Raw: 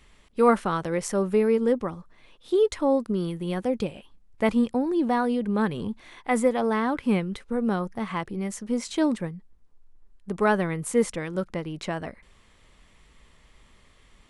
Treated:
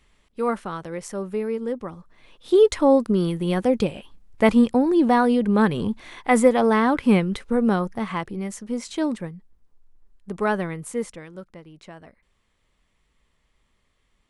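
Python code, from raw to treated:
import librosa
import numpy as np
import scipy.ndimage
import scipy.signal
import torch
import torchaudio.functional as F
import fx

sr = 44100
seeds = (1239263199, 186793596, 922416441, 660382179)

y = fx.gain(x, sr, db=fx.line((1.73, -5.0), (2.56, 6.0), (7.55, 6.0), (8.69, -1.0), (10.64, -1.0), (11.52, -12.0)))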